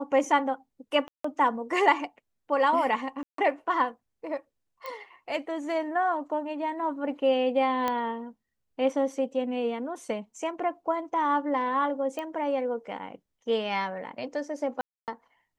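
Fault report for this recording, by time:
0:01.08–0:01.24: drop-out 164 ms
0:03.23–0:03.38: drop-out 153 ms
0:04.86: click −23 dBFS
0:07.88: click −14 dBFS
0:12.19: click −21 dBFS
0:14.81–0:15.08: drop-out 268 ms

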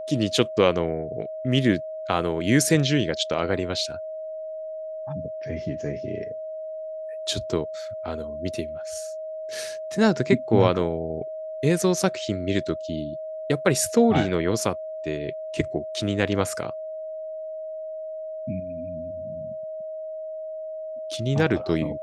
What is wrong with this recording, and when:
whistle 630 Hz −31 dBFS

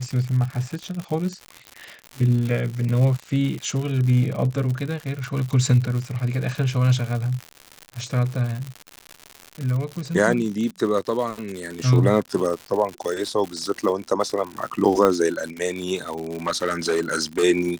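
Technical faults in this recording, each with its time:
surface crackle 140 per second −27 dBFS
0:15.05: click −7 dBFS
0:16.47–0:17.44: clipping −16.5 dBFS

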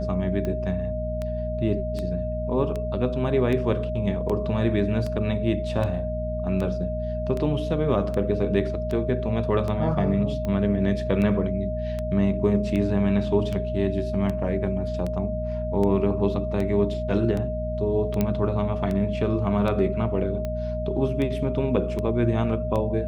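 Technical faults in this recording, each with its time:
mains hum 60 Hz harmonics 4 −30 dBFS
scratch tick 78 rpm −18 dBFS
whistle 620 Hz −29 dBFS
0:18.21: click −10 dBFS

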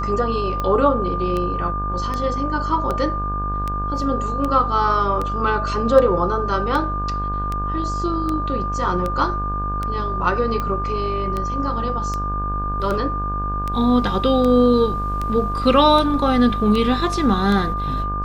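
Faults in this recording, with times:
mains buzz 50 Hz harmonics 34 −26 dBFS
scratch tick 78 rpm −12 dBFS
whistle 1,200 Hz −24 dBFS

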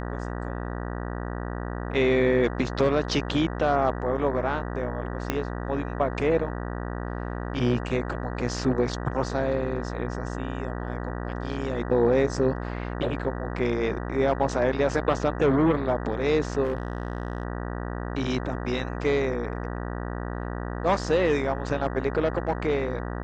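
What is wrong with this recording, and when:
mains buzz 60 Hz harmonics 32 −32 dBFS
0:05.30: click −10 dBFS
0:16.63–0:17.43: clipping −22.5 dBFS

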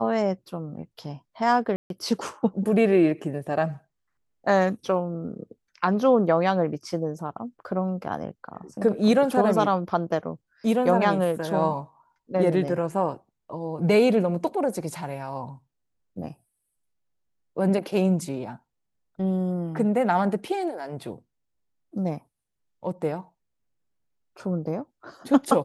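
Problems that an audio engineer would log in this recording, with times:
0:01.76–0:01.90: drop-out 142 ms

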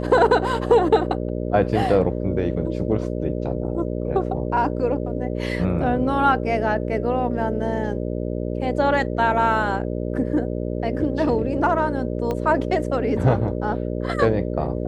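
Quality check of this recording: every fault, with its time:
mains buzz 60 Hz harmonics 10 −26 dBFS
0:12.31: click −14 dBFS

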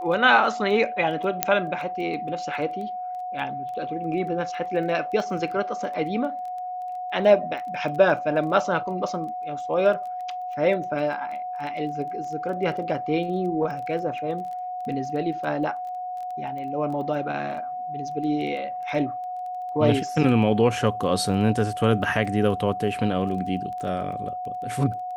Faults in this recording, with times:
surface crackle 11 per second −33 dBFS
whistle 730 Hz −29 dBFS
0:01.43: click −1 dBFS

